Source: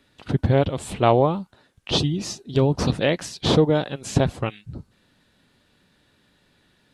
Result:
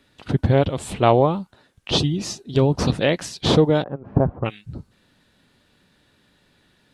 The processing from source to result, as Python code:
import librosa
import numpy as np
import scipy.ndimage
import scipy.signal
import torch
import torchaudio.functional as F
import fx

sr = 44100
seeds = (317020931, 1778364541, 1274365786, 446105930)

y = fx.lowpass(x, sr, hz=1200.0, slope=24, at=(3.82, 4.44), fade=0.02)
y = y * 10.0 ** (1.5 / 20.0)